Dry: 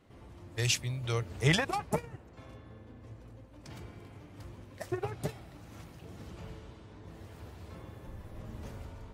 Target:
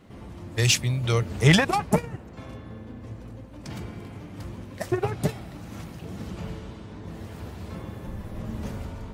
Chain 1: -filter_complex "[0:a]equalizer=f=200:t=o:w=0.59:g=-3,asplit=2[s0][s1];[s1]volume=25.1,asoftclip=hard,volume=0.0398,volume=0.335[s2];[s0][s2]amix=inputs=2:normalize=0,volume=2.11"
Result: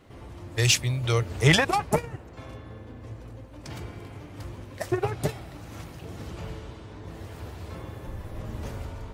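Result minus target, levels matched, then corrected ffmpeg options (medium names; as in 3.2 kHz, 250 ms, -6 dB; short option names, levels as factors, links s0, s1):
250 Hz band -3.5 dB
-filter_complex "[0:a]equalizer=f=200:t=o:w=0.59:g=6.5,asplit=2[s0][s1];[s1]volume=25.1,asoftclip=hard,volume=0.0398,volume=0.335[s2];[s0][s2]amix=inputs=2:normalize=0,volume=2.11"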